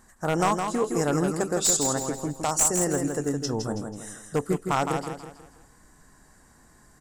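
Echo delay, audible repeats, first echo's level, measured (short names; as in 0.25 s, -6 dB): 0.163 s, 4, -6.0 dB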